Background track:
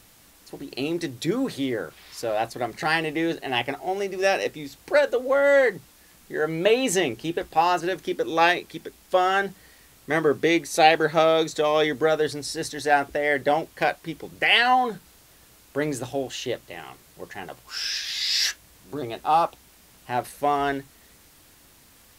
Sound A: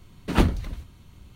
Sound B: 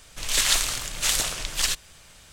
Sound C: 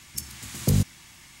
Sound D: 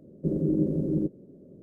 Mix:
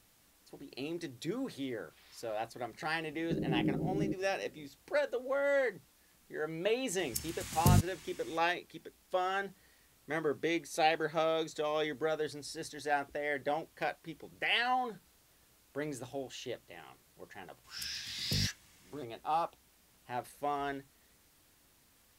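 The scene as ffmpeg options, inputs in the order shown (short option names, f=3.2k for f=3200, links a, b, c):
-filter_complex "[3:a]asplit=2[a][b];[0:a]volume=-12.5dB[c];[4:a]atrim=end=1.62,asetpts=PTS-STARTPTS,volume=-8dB,afade=t=in:d=0.004:c=hsin,afade=t=out:st=1.616:d=0.004:c=hsin,adelay=3060[d];[a]atrim=end=1.4,asetpts=PTS-STARTPTS,volume=-4.5dB,afade=t=in:d=0.004:c=hsin,afade=t=out:st=1.396:d=0.004:c=hsin,adelay=307818S[e];[b]atrim=end=1.4,asetpts=PTS-STARTPTS,volume=-14.5dB,afade=t=in:d=0.004:c=hsin,afade=t=out:st=1.396:d=0.004:c=hsin,adelay=777924S[f];[c][d][e][f]amix=inputs=4:normalize=0"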